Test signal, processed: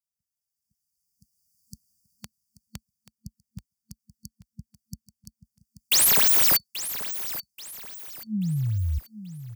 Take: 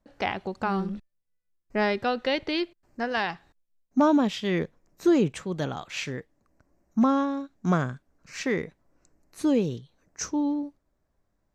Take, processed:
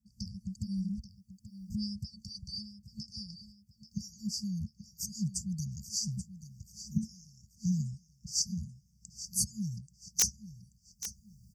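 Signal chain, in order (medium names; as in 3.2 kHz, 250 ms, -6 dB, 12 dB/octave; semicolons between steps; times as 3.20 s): recorder AGC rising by 15 dB/s; FFT band-reject 220–4500 Hz; high-pass 55 Hz 24 dB/octave; bass shelf 240 Hz +4.5 dB; harmonic-percussive split harmonic -14 dB; peaking EQ 1.5 kHz +6.5 dB 1.1 oct; in parallel at -1.5 dB: peak limiter -25 dBFS; on the sum: integer overflow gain 15.5 dB; on a send: feedback delay 833 ms, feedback 36%, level -13 dB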